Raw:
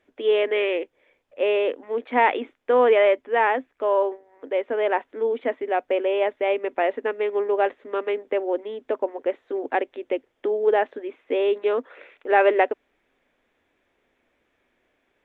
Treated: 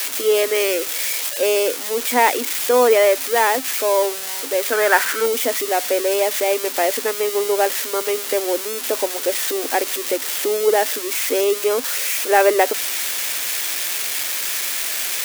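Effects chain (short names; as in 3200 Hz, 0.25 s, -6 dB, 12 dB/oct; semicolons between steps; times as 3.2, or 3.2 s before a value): switching spikes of -14 dBFS; 4.72–5.26 bell 1500 Hz +15 dB 0.73 oct; gain +3 dB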